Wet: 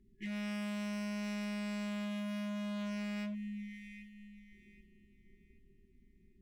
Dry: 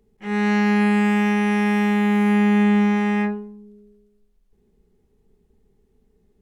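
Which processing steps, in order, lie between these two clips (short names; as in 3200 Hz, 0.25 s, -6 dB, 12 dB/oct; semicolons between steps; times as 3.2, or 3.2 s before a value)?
FFT band-reject 400–1700 Hz; on a send: thinning echo 0.779 s, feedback 36%, high-pass 260 Hz, level -20 dB; on the sum: hard clip -28 dBFS, distortion -7 dB; compressor 6:1, threshold -37 dBFS, peak gain reduction 7.5 dB; mismatched tape noise reduction decoder only; gain -2.5 dB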